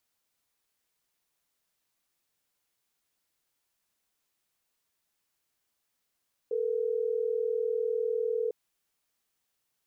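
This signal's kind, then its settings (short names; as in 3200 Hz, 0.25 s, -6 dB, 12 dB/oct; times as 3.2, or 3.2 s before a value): call progress tone ringback tone, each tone -29.5 dBFS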